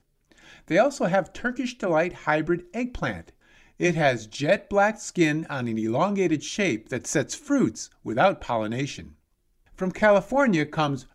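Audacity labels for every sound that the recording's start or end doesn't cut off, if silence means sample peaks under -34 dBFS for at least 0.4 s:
0.700000	3.210000	sound
3.800000	9.040000	sound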